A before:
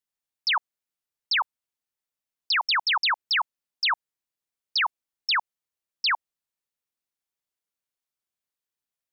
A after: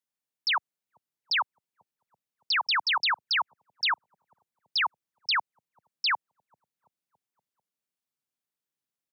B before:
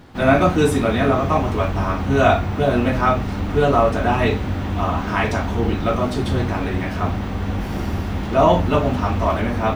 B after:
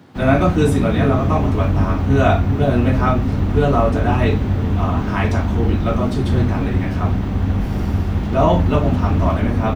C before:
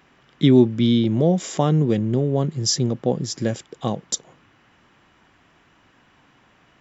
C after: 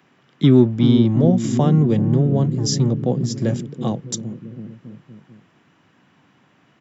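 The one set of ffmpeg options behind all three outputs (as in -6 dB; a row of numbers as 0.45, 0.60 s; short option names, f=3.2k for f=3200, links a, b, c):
-filter_complex "[0:a]lowshelf=f=230:g=8.5,acrossover=split=110|380|2500[a][b][c][d];[a]acrusher=bits=4:mix=0:aa=0.5[e];[b]aecho=1:1:390|721.5|1003|1243|1446:0.631|0.398|0.251|0.158|0.1[f];[e][f][c][d]amix=inputs=4:normalize=0,volume=-2.5dB"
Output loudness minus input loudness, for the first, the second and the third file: -2.5, +2.0, +2.5 LU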